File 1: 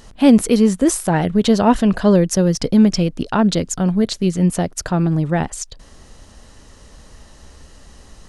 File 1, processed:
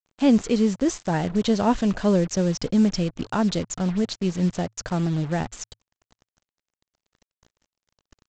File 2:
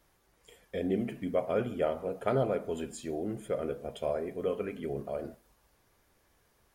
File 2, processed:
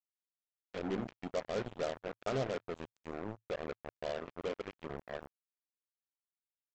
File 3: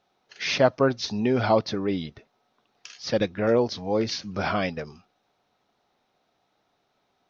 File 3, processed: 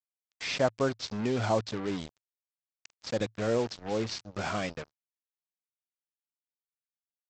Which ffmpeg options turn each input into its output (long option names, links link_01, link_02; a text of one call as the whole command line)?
ffmpeg -i in.wav -af "aresample=16000,acrusher=bits=4:mix=0:aa=0.5,aresample=44100,adynamicequalizer=threshold=0.00562:dfrequency=110:dqfactor=6.5:tfrequency=110:tqfactor=6.5:attack=5:release=100:ratio=0.375:range=2.5:mode=boostabove:tftype=bell,volume=-7dB" out.wav